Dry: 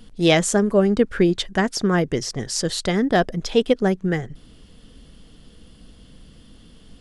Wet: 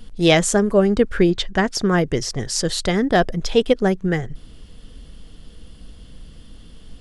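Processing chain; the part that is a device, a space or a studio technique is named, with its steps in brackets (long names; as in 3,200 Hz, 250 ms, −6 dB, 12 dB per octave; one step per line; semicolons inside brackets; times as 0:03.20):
0:01.30–0:01.75: low-pass filter 6,600 Hz 12 dB per octave
low shelf boost with a cut just above (low-shelf EQ 70 Hz +7.5 dB; parametric band 230 Hz −2.5 dB 1 octave)
level +2 dB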